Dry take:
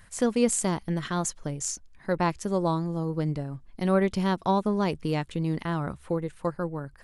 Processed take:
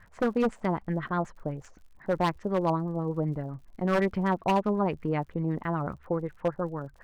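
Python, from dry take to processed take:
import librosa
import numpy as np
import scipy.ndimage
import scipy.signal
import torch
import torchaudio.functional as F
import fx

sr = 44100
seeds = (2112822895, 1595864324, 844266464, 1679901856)

y = fx.filter_lfo_lowpass(x, sr, shape='sine', hz=8.0, low_hz=640.0, high_hz=2000.0, q=1.9)
y = fx.dmg_crackle(y, sr, seeds[0], per_s=79.0, level_db=-49.0)
y = 10.0 ** (-16.0 / 20.0) * (np.abs((y / 10.0 ** (-16.0 / 20.0) + 3.0) % 4.0 - 2.0) - 1.0)
y = y * librosa.db_to_amplitude(-2.0)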